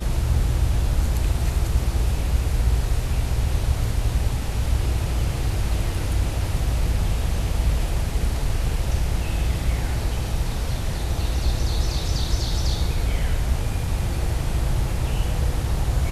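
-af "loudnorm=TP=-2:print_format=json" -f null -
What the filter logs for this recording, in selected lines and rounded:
"input_i" : "-24.8",
"input_tp" : "-8.1",
"input_lra" : "1.3",
"input_thresh" : "-34.8",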